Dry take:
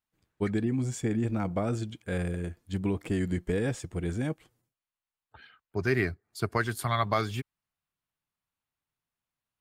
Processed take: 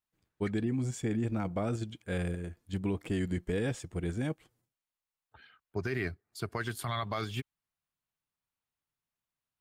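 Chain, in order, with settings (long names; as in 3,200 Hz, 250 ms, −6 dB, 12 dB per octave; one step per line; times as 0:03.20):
dynamic equaliser 3,100 Hz, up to +5 dB, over −50 dBFS, Q 2.3
in parallel at −3 dB: output level in coarse steps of 16 dB
on the sum: brickwall limiter −16.5 dBFS, peak gain reduction 6.5 dB
level −6 dB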